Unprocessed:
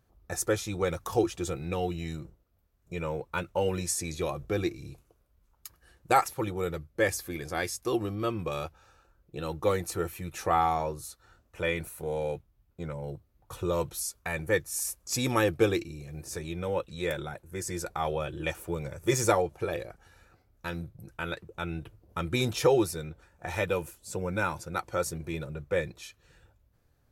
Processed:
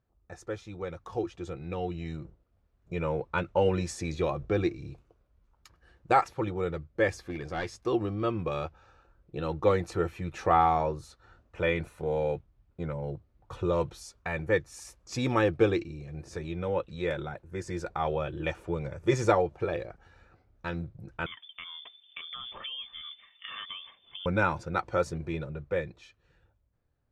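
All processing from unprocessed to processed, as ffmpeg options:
-filter_complex "[0:a]asettb=1/sr,asplit=3[a][b][c];[a]atrim=end=7.214[d];[b]atrim=start=7.21:end=7.8,asetpts=PTS-STARTPTS,afade=t=in:d=0.004:c=qsin,afade=t=out:st=0.586:d=0.004:c=qsin,highshelf=f=12k:g=-5,aeval=exprs='clip(val(0),-1,0.0299)':c=same[e];[c]atrim=start=7.796[f];[d][e]acrossfade=d=0.004:c1=hsin:c2=qsin[g];[g][f]acrossfade=d=0.004:c1=qsin:c2=hsin,asettb=1/sr,asplit=3[h][i][j];[h]atrim=end=21.264[k];[i]atrim=start=21.26:end=24.26,asetpts=PTS-STARTPTS,afade=t=in:d=0.004:c=qsin,afade=t=out:st=2.996:d=0.004:c=qsin,acompressor=threshold=-39dB:ratio=5:attack=3.2:release=140:knee=1:detection=peak,lowpass=f=3.1k:t=q:w=0.5098,lowpass=f=3.1k:t=q:w=0.6013,lowpass=f=3.1k:t=q:w=0.9,lowpass=f=3.1k:t=q:w=2.563,afreqshift=-3600[l];[j]atrim=start=24.256[m];[k][l]acrossfade=d=0.004:c1=hsin:c2=qsin[n];[n][m]acrossfade=d=0.004:c1=qsin:c2=hsin,lowpass=5.5k,highshelf=f=3.5k:g=-8.5,dynaudnorm=f=460:g=9:m=14dB,volume=-8.5dB"

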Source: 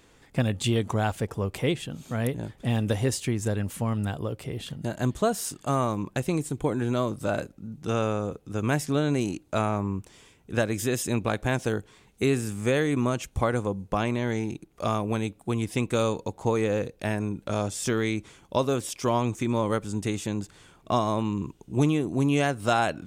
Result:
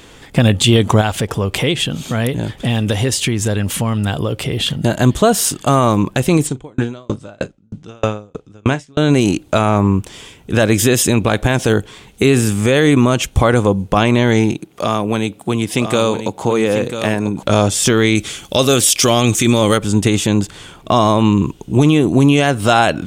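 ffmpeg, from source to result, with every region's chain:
-filter_complex "[0:a]asettb=1/sr,asplit=3[a][b][c];[a]atrim=end=1.014[d];[b]atrim=start=1.01:end=4.76,asetpts=PTS-STARTPTS,afade=t=in:d=0.004:c=qsin,afade=t=out:st=3.746:d=0.004:c=qsin,equalizer=f=3.6k:t=o:w=2.9:g=3,acompressor=threshold=-32dB:ratio=2.5:attack=3.2:release=140:knee=1:detection=peak[e];[c]atrim=start=4.756[f];[d][e]acrossfade=d=0.004:c1=hsin:c2=qsin[g];[g][f]acrossfade=d=0.004:c1=qsin:c2=hsin,asettb=1/sr,asplit=3[h][i][j];[h]atrim=end=6.474[k];[i]atrim=start=6.47:end=8.98,asetpts=PTS-STARTPTS,afade=t=in:d=0.004:c=qsin,afade=t=out:st=2.506:d=0.004:c=qsin,lowpass=f=8k:w=0.5412,lowpass=f=8k:w=1.3066,asplit=2[l][m];[m]adelay=38,volume=-12.5dB[n];[l][n]amix=inputs=2:normalize=0,atrim=end_sample=110691,aeval=exprs='val(0)*pow(10,-40*if(lt(mod(3.2*n/s,1),2*abs(3.2)/1000),1-mod(3.2*n/s,1)/(2*abs(3.2)/1000),(mod(3.2*n/s,1)-2*abs(3.2)/1000)/(1-2*abs(3.2)/1000))/20)':c=same[o];[j]atrim=start=8.976[p];[k][o]acrossfade=d=0.004:c1=hsin:c2=qsin[q];[q][p]acrossfade=d=0.004:c1=qsin:c2=hsin,asettb=1/sr,asplit=3[r][s][t];[r]atrim=end=14.524[u];[s]atrim=start=14.52:end=17.43,asetpts=PTS-STARTPTS,afade=t=in:d=0.004:c=qsin,afade=t=out:st=2.906:d=0.004:c=qsin,highpass=120,acompressor=threshold=-37dB:ratio=1.5:attack=3.2:release=140:knee=1:detection=peak,aecho=1:1:992:0.355,atrim=end_sample=128331[v];[t]atrim=start=17.426[w];[u][v]acrossfade=d=0.004:c1=hsin:c2=qsin[x];[x][w]acrossfade=d=0.004:c1=qsin:c2=hsin,asettb=1/sr,asplit=3[y][z][aa];[y]atrim=end=18.154[ab];[z]atrim=start=18.15:end=19.78,asetpts=PTS-STARTPTS,afade=t=in:d=0.004:c=qsin,afade=t=out:st=1.626:d=0.004:c=qsin,highshelf=f=2.5k:g=11.5,bandreject=f=970:w=5.7[ac];[aa]atrim=start=19.776[ad];[ab][ac]acrossfade=d=0.004:c1=hsin:c2=qsin[ae];[ae][ad]acrossfade=d=0.004:c1=qsin:c2=hsin,equalizer=f=3.2k:w=2.9:g=5,alimiter=level_in=17dB:limit=-1dB:release=50:level=0:latency=1,volume=-1dB"

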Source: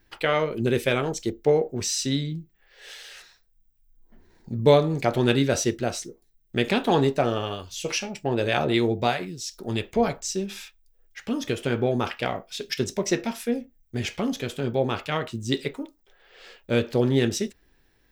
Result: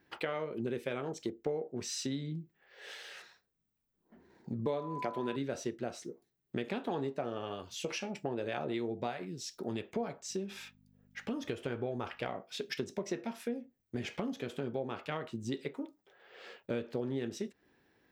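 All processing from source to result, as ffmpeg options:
-filter_complex "[0:a]asettb=1/sr,asplit=3[a][b][c];[a]atrim=end=4.664[d];[b]atrim=start=4.66:end=5.36,asetpts=PTS-STARTPTS,afade=t=in:d=0.004:c=qsin,afade=t=out:st=0.696:d=0.004:c=qsin,highpass=160,aeval=exprs='val(0)+0.0398*sin(2*PI*1000*n/s)':c=same[e];[c]atrim=start=5.356[f];[d][e]acrossfade=d=0.004:c1=hsin:c2=qsin[g];[g][f]acrossfade=d=0.004:c1=qsin:c2=hsin,asettb=1/sr,asplit=3[h][i][j];[h]atrim=end=10.294[k];[i]atrim=start=10.29:end=12.29,asetpts=PTS-STARTPTS,afade=t=in:d=0.004:c=qsin,afade=t=out:st=1.996:d=0.004:c=qsin,asubboost=boost=11.5:cutoff=71,aeval=exprs='val(0)+0.00158*(sin(2*PI*50*n/s)+sin(2*PI*2*50*n/s)/2+sin(2*PI*3*50*n/s)/3+sin(2*PI*4*50*n/s)/4+sin(2*PI*5*50*n/s)/5)':c=same[l];[j]atrim=start=12.286[m];[k][l]acrossfade=d=0.004:c1=hsin:c2=qsin[n];[n][m]acrossfade=d=0.004:c1=qsin:c2=hsin,highpass=150,highshelf=f=3k:g=-11,acompressor=threshold=-35dB:ratio=4"

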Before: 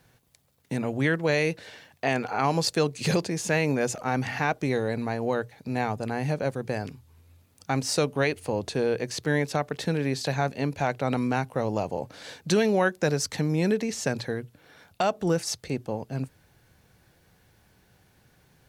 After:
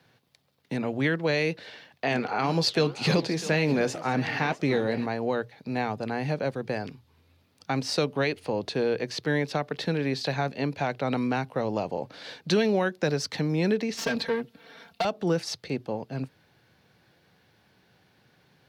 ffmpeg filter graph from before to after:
-filter_complex "[0:a]asettb=1/sr,asplit=3[a][b][c];[a]atrim=end=2.104[d];[b]atrim=start=2.1:end=5.06,asetpts=PTS-STARTPTS,afade=t=in:d=0.004:c=qsin,afade=t=out:st=2.956:d=0.004:c=qsin,flanger=delay=5.4:depth=9.4:regen=-70:speed=2:shape=sinusoidal,acontrast=58,aecho=1:1:651:0.141,atrim=end_sample=130536[e];[c]atrim=start=5.056[f];[d][e]acrossfade=d=0.004:c1=hsin:c2=qsin[g];[g][f]acrossfade=d=0.004:c1=qsin:c2=hsin,asettb=1/sr,asplit=3[h][i][j];[h]atrim=end=13.974[k];[i]atrim=start=13.97:end=15.05,asetpts=PTS-STARTPTS,afade=t=in:d=0.004:c=qsin,afade=t=out:st=1.076:d=0.004:c=qsin,aeval=exprs='(tanh(31.6*val(0)+0.75)-tanh(0.75))/31.6':c=same,aecho=1:1:4.4:0.97,atrim=end_sample=47628,acontrast=50[l];[j]atrim=start=15.046[m];[k][l]acrossfade=d=0.004:c1=hsin:c2=qsin[n];[n][m]acrossfade=d=0.004:c1=qsin:c2=hsin,highpass=130,highshelf=f=5.8k:t=q:w=1.5:g=-8.5,acrossover=split=400|3000[o][p][q];[p]acompressor=threshold=-25dB:ratio=6[r];[o][r][q]amix=inputs=3:normalize=0"

